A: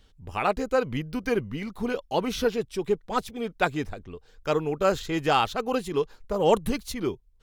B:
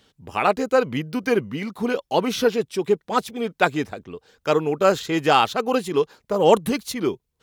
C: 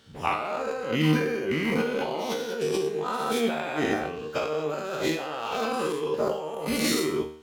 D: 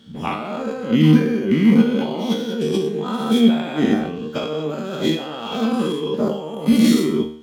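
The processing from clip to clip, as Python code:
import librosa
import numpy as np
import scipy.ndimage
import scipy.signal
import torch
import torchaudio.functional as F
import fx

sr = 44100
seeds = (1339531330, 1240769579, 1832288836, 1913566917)

y1 = scipy.signal.sosfilt(scipy.signal.butter(2, 150.0, 'highpass', fs=sr, output='sos'), x)
y1 = F.gain(torch.from_numpy(y1), 5.5).numpy()
y2 = fx.spec_dilate(y1, sr, span_ms=240)
y2 = fx.over_compress(y2, sr, threshold_db=-20.0, ratio=-1.0)
y2 = fx.comb_fb(y2, sr, f0_hz=77.0, decay_s=0.55, harmonics='all', damping=0.0, mix_pct=80)
y3 = fx.small_body(y2, sr, hz=(210.0, 3300.0), ring_ms=40, db=18)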